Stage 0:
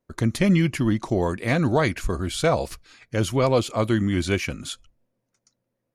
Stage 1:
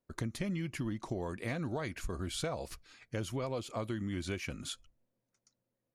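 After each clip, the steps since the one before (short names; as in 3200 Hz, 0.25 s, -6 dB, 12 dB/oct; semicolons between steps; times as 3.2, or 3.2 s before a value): compressor, threshold -26 dBFS, peak gain reduction 11 dB; gain -7.5 dB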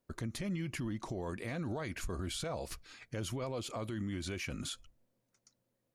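limiter -34.5 dBFS, peak gain reduction 10.5 dB; gain +4 dB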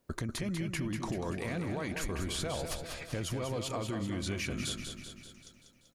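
compressor, threshold -41 dBFS, peak gain reduction 7.5 dB; on a send: feedback echo 0.193 s, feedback 58%, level -7 dB; on the sum: gain +8 dB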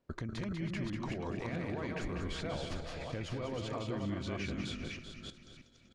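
reverse delay 0.312 s, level -3 dB; air absorption 130 m; gain -3.5 dB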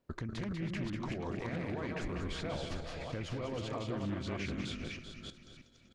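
Doppler distortion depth 0.21 ms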